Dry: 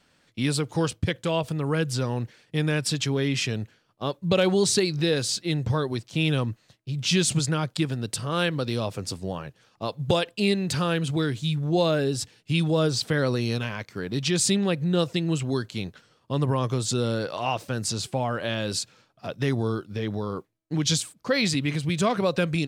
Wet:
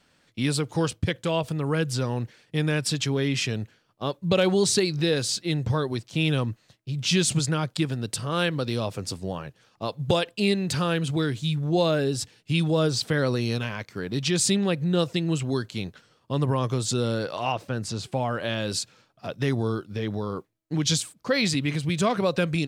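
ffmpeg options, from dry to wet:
-filter_complex "[0:a]asettb=1/sr,asplit=3[s0][s1][s2];[s0]atrim=end=17.524[s3];[s1]atrim=start=17.52:end=18.12,asetpts=PTS-STARTPTS,afade=t=in:d=0.004:c=qsin,afade=t=out:st=0.596:d=0.004:c=qsin,highshelf=f=4200:g=-10[s4];[s2]atrim=start=18.116[s5];[s3][s4]acrossfade=d=0.004:c1=hsin:c2=qsin[s6];[s6][s5]acrossfade=d=0.004:c1=qsin:c2=hsin"

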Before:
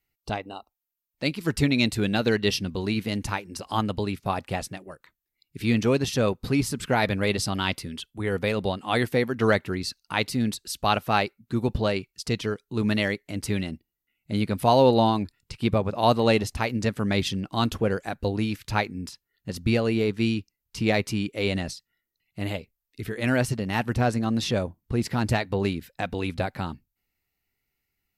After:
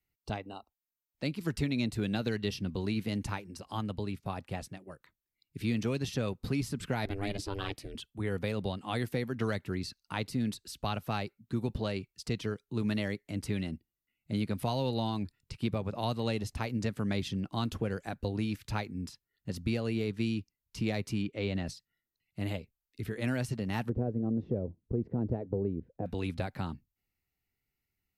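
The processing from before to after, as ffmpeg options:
-filter_complex "[0:a]asettb=1/sr,asplit=3[s0][s1][s2];[s0]atrim=end=7.054[s3];[s1]atrim=start=7.05:end=7.95,asetpts=PTS-STARTPTS,afade=t=in:d=0.004:c=qsin,afade=t=out:st=0.896:d=0.004:c=qsin,aeval=exprs='val(0)*sin(2*PI*200*n/s)':c=same[s4];[s2]atrim=start=7.946[s5];[s3][s4]acrossfade=d=0.004:c1=hsin:c2=qsin[s6];[s6][s5]acrossfade=d=0.004:c1=qsin:c2=hsin,asettb=1/sr,asplit=3[s7][s8][s9];[s7]atrim=end=21.224[s10];[s8]atrim=start=21.22:end=21.67,asetpts=PTS-STARTPTS,afade=t=in:d=0.004:c=qsin,afade=t=out:st=0.446:d=0.004:c=qsin,lowpass=4500[s11];[s9]atrim=start=21.666[s12];[s10][s11]acrossfade=d=0.004:c1=hsin:c2=qsin[s13];[s13][s12]acrossfade=d=0.004:c1=qsin:c2=hsin,asettb=1/sr,asplit=3[s14][s15][s16];[s14]atrim=end=23.894[s17];[s15]atrim=start=23.89:end=26.06,asetpts=PTS-STARTPTS,afade=t=in:d=0.004:c=qsin,afade=t=out:st=2.166:d=0.004:c=qsin,lowpass=f=460:t=q:w=2.3[s18];[s16]atrim=start=26.056[s19];[s17][s18]acrossfade=d=0.004:c1=hsin:c2=qsin[s20];[s20][s19]acrossfade=d=0.004:c1=qsin:c2=hsin,asplit=3[s21][s22][s23];[s21]atrim=end=3.512[s24];[s22]atrim=start=3.508:end=4.872,asetpts=PTS-STARTPTS,volume=0.668[s25];[s23]atrim=start=4.868[s26];[s24][s25]acrossfade=d=0.004:c1=hsin:c2=hsin[s27];[s27][s26]acrossfade=d=0.004:c1=hsin:c2=hsin,acrossover=split=190|1700|3800[s28][s29][s30][s31];[s28]acompressor=threshold=0.0251:ratio=4[s32];[s29]acompressor=threshold=0.0447:ratio=4[s33];[s30]acompressor=threshold=0.0158:ratio=4[s34];[s31]acompressor=threshold=0.0141:ratio=4[s35];[s32][s33][s34][s35]amix=inputs=4:normalize=0,equalizer=f=100:w=0.35:g=5.5,volume=0.422"

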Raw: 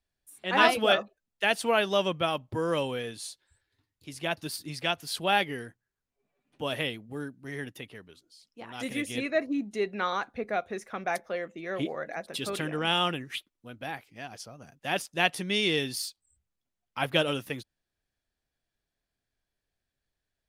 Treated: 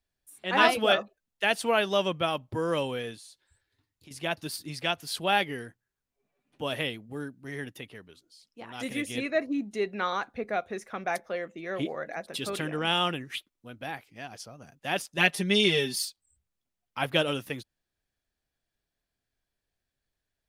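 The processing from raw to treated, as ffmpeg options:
-filter_complex "[0:a]asettb=1/sr,asplit=3[s0][s1][s2];[s0]atrim=end=3.154[s3];[s1]atrim=start=3.15:end=4.11,asetpts=PTS-STARTPTS,afade=t=in:d=0.004:c=qsin,afade=t=out:st=0.956:d=0.004:c=qsin,acompressor=threshold=0.00398:ratio=4:attack=3.2:release=140:knee=1:detection=peak[s4];[s2]atrim=start=4.106[s5];[s3][s4]acrossfade=d=0.004:c1=hsin:c2=qsin[s6];[s6][s5]acrossfade=d=0.004:c1=qsin:c2=hsin,asettb=1/sr,asplit=3[s7][s8][s9];[s7]atrim=end=15.174[s10];[s8]atrim=start=15.17:end=16.05,asetpts=PTS-STARTPTS,afade=t=in:d=0.004:c=qsin,afade=t=out:st=0.876:d=0.004:c=qsin,aecho=1:1:5:0.96,atrim=end_sample=38808[s11];[s9]atrim=start=16.046[s12];[s10][s11]acrossfade=d=0.004:c1=hsin:c2=qsin[s13];[s13][s12]acrossfade=d=0.004:c1=qsin:c2=hsin"

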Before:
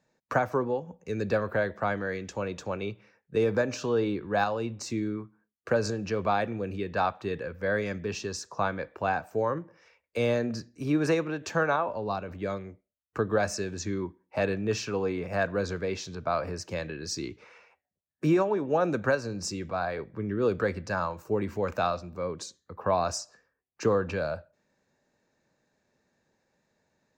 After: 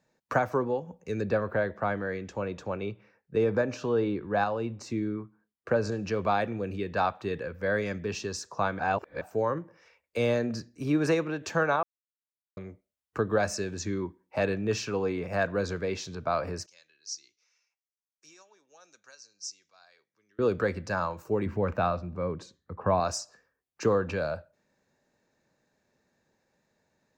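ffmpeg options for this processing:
-filter_complex "[0:a]asettb=1/sr,asplit=3[s0][s1][s2];[s0]atrim=end=1.214[s3];[s1]atrim=start=1.21:end=5.92,asetpts=PTS-STARTPTS,afade=t=in:d=0.004:c=qsin,afade=t=out:st=4.706:d=0.004:c=qsin,highshelf=f=3700:g=-10[s4];[s2]atrim=start=5.916[s5];[s3][s4]acrossfade=d=0.004:c1=hsin:c2=qsin[s6];[s6][s5]acrossfade=d=0.004:c1=qsin:c2=hsin,asettb=1/sr,asplit=3[s7][s8][s9];[s7]atrim=end=16.664[s10];[s8]atrim=start=16.66:end=20.39,asetpts=PTS-STARTPTS,afade=t=in:d=0.004:c=qsin,afade=t=out:st=3.726:d=0.004:c=qsin,bandpass=f=5900:t=q:w=4.5[s11];[s9]atrim=start=20.386[s12];[s10][s11]acrossfade=d=0.004:c1=hsin:c2=qsin[s13];[s13][s12]acrossfade=d=0.004:c1=qsin:c2=hsin,asettb=1/sr,asplit=3[s14][s15][s16];[s14]atrim=end=21.464[s17];[s15]atrim=start=21.46:end=23,asetpts=PTS-STARTPTS,afade=t=in:d=0.004:c=qsin,afade=t=out:st=1.536:d=0.004:c=qsin,bass=f=250:g=6,treble=f=4000:g=-15[s18];[s16]atrim=start=22.996[s19];[s17][s18]acrossfade=d=0.004:c1=hsin:c2=qsin[s20];[s20][s19]acrossfade=d=0.004:c1=qsin:c2=hsin,asplit=5[s21][s22][s23][s24][s25];[s21]atrim=end=8.792[s26];[s22]atrim=start=8.788:end=9.212,asetpts=PTS-STARTPTS,areverse[s27];[s23]atrim=start=9.208:end=11.83,asetpts=PTS-STARTPTS,afade=t=out:st=2.618:d=0.004:c=hsin[s28];[s24]atrim=start=11.83:end=12.57,asetpts=PTS-STARTPTS,volume=0[s29];[s25]atrim=start=12.57,asetpts=PTS-STARTPTS,afade=t=in:d=0.004:c=hsin[s30];[s26][s27]acrossfade=d=0.004:c1=hsin:c2=hsin[s31];[s28][s29][s30]concat=n=3:v=0:a=1[s32];[s31][s32]acrossfade=d=0.004:c1=hsin:c2=hsin"

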